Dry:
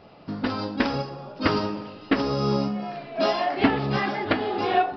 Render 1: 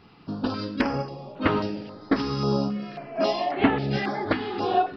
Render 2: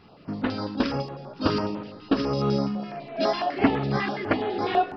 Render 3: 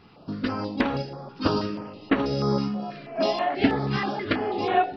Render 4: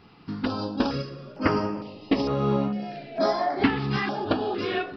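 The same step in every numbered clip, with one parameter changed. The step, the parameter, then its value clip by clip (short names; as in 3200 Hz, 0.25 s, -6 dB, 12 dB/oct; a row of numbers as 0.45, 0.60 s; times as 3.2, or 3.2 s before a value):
stepped notch, rate: 3.7, 12, 6.2, 2.2 Hz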